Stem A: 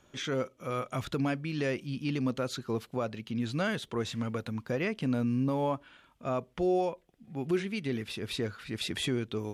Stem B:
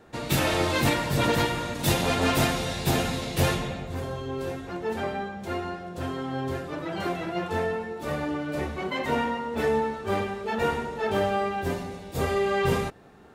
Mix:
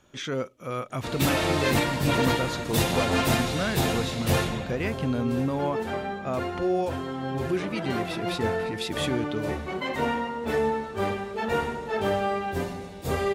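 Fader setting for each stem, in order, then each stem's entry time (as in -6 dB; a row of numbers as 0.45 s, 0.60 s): +2.0 dB, -0.5 dB; 0.00 s, 0.90 s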